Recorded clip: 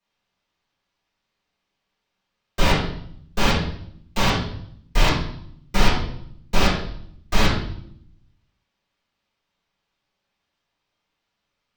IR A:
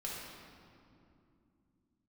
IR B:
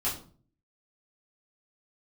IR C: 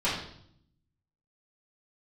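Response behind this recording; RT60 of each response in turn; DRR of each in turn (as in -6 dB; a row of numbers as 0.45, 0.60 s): C; 2.6, 0.45, 0.65 s; -5.5, -9.0, -10.5 dB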